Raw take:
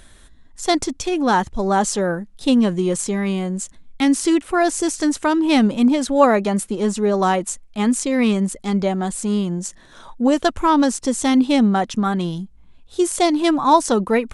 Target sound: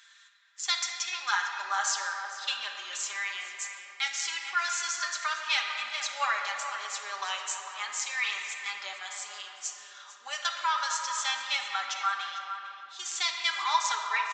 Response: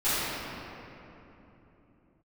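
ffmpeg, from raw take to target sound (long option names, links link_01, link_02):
-filter_complex "[0:a]highpass=frequency=1300:width=0.5412,highpass=frequency=1300:width=1.3066,aecho=1:1:5:0.65,asplit=2[link_01][link_02];[link_02]adelay=449,volume=-10dB,highshelf=frequency=4000:gain=-10.1[link_03];[link_01][link_03]amix=inputs=2:normalize=0,asplit=2[link_04][link_05];[1:a]atrim=start_sample=2205[link_06];[link_05][link_06]afir=irnorm=-1:irlink=0,volume=-16dB[link_07];[link_04][link_07]amix=inputs=2:normalize=0,aresample=16000,aresample=44100,volume=-5.5dB"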